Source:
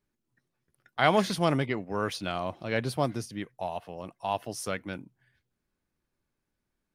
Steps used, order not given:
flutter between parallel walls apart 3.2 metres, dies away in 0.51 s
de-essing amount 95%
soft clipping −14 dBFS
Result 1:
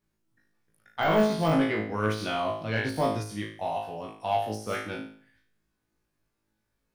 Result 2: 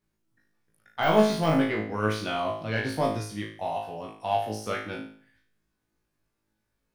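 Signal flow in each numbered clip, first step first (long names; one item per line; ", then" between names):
flutter between parallel walls, then soft clipping, then de-essing
soft clipping, then de-essing, then flutter between parallel walls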